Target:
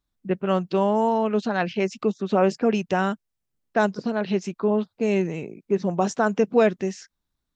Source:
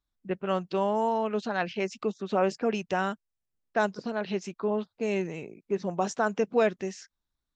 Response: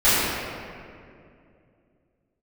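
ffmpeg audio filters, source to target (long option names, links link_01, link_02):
-af "equalizer=frequency=180:width=0.52:gain=5,volume=3.5dB"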